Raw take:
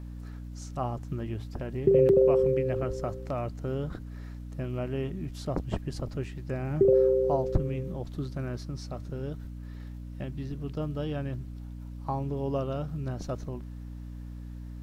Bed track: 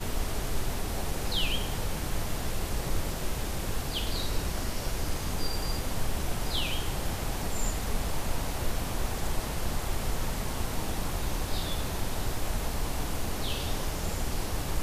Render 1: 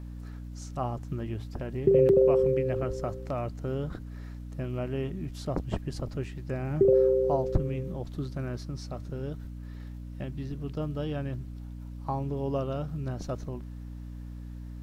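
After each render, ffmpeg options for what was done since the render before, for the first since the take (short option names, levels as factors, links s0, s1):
-af anull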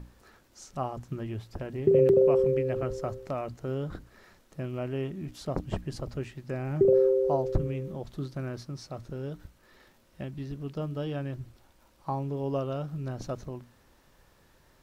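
-af "bandreject=f=60:t=h:w=6,bandreject=f=120:t=h:w=6,bandreject=f=180:t=h:w=6,bandreject=f=240:t=h:w=6,bandreject=f=300:t=h:w=6"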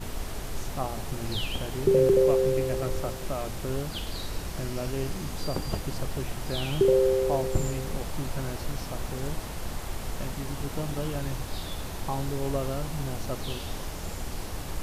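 -filter_complex "[1:a]volume=0.668[s0];[0:a][s0]amix=inputs=2:normalize=0"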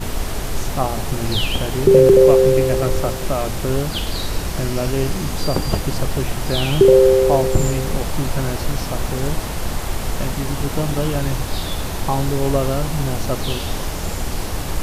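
-af "volume=3.55,alimiter=limit=0.891:level=0:latency=1"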